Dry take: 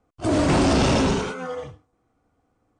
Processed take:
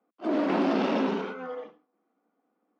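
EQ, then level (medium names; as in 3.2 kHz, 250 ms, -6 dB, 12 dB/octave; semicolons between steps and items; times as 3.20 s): steep high-pass 190 Hz 72 dB/octave; distance through air 300 m; -4.5 dB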